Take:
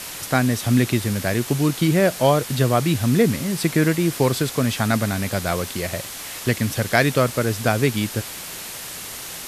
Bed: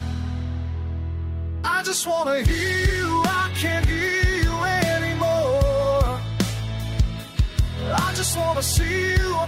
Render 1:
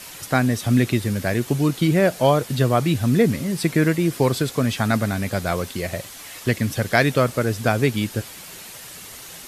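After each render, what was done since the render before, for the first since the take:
broadband denoise 7 dB, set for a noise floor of −34 dBFS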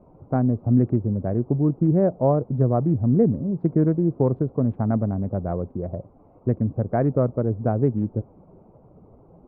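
adaptive Wiener filter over 25 samples
Bessel low-pass filter 640 Hz, order 4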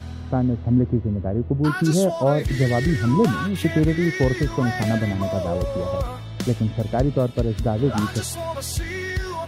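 mix in bed −6.5 dB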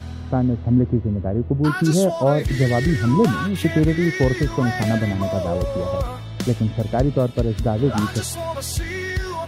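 level +1.5 dB

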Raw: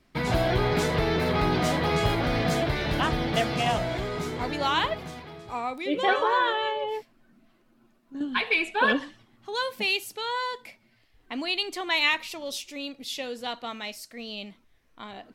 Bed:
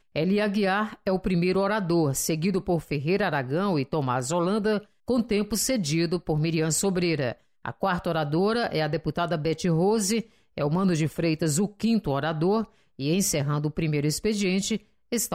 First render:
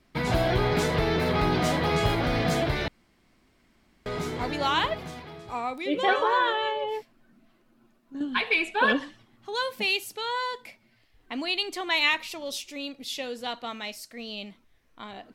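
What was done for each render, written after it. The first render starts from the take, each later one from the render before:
0:02.88–0:04.06: fill with room tone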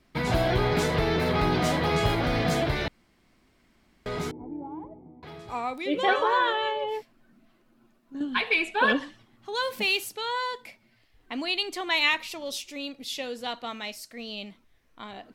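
0:04.31–0:05.23: formant resonators in series u
0:09.63–0:10.09: mu-law and A-law mismatch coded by mu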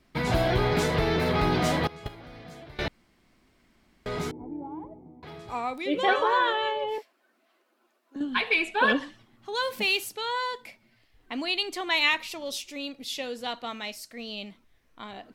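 0:01.87–0:02.79: noise gate −20 dBFS, range −20 dB
0:06.98–0:08.16: high-pass filter 390 Hz 24 dB per octave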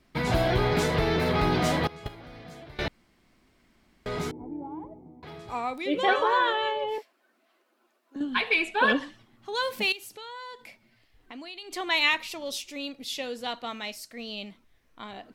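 0:09.92–0:11.71: downward compressor 3 to 1, threshold −42 dBFS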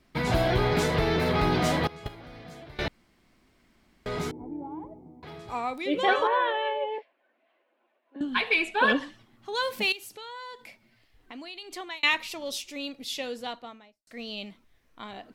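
0:06.27–0:08.21: loudspeaker in its box 310–3,000 Hz, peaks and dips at 370 Hz −5 dB, 550 Hz +4 dB, 1,300 Hz −9 dB
0:11.62–0:12.03: fade out
0:13.27–0:14.07: fade out and dull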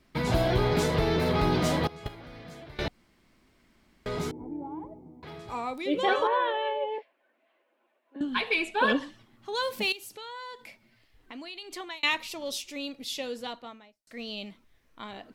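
notch filter 730 Hz, Q 20
dynamic equaliser 1,900 Hz, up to −4 dB, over −40 dBFS, Q 0.99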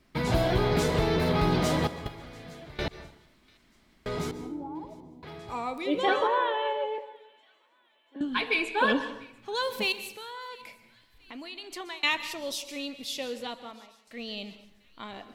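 delay with a high-pass on its return 693 ms, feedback 51%, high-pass 2,200 Hz, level −23.5 dB
dense smooth reverb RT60 0.73 s, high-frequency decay 0.7×, pre-delay 115 ms, DRR 12.5 dB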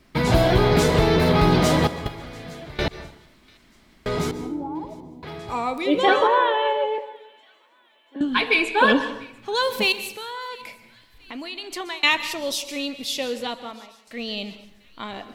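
level +7.5 dB

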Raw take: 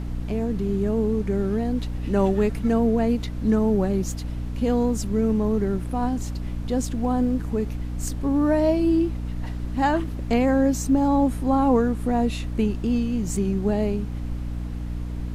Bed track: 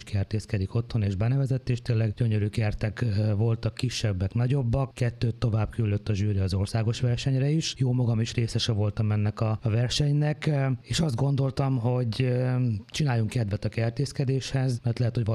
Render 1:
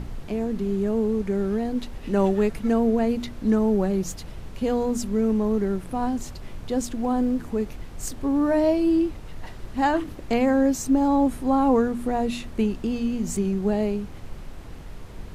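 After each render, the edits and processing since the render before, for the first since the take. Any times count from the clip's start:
hum removal 60 Hz, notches 5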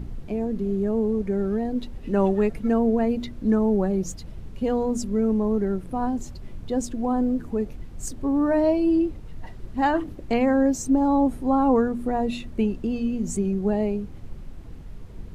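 broadband denoise 9 dB, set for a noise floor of −39 dBFS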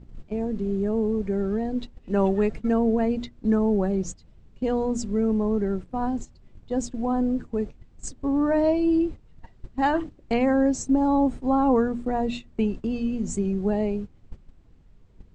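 elliptic low-pass filter 8,000 Hz, stop band 60 dB
noise gate −31 dBFS, range −14 dB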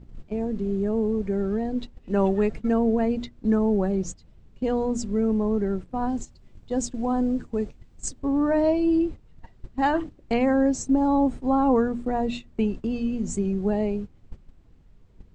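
0:06.09–0:08.20: high-shelf EQ 4,100 Hz +6 dB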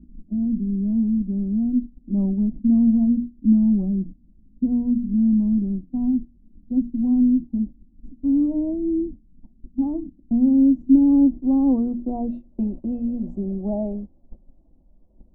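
low-pass filter sweep 250 Hz → 530 Hz, 0:10.50–0:12.77
phaser with its sweep stopped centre 440 Hz, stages 6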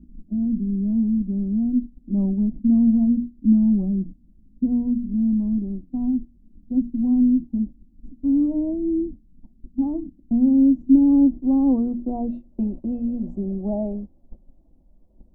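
0:04.87–0:06.75: dynamic equaliser 170 Hz, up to −6 dB, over −34 dBFS, Q 2.3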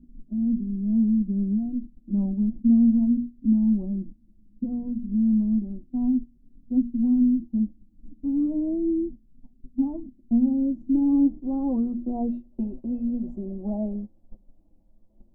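flanger 0.31 Hz, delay 7.6 ms, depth 2.4 ms, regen +24%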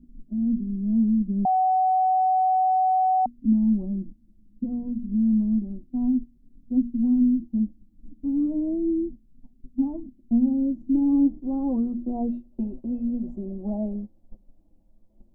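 0:01.45–0:03.26: beep over 749 Hz −17.5 dBFS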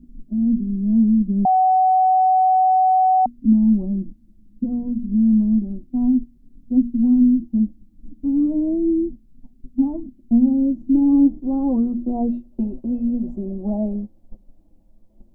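level +5.5 dB

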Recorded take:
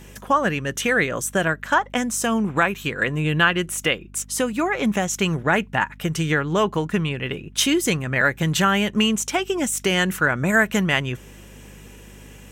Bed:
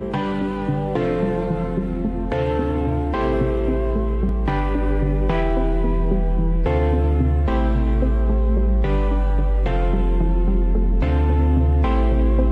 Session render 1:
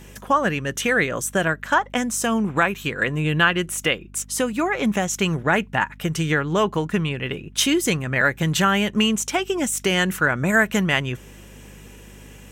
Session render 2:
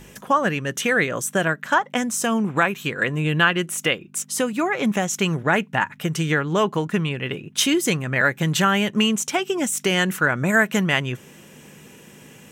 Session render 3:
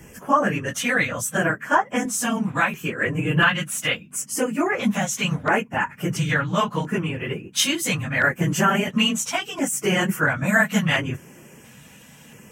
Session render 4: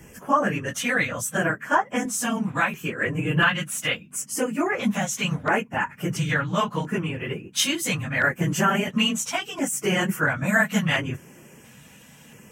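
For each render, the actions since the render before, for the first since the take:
no processing that can be heard
hum removal 50 Hz, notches 2
random phases in long frames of 50 ms; auto-filter notch square 0.73 Hz 380–3,800 Hz
level −2 dB

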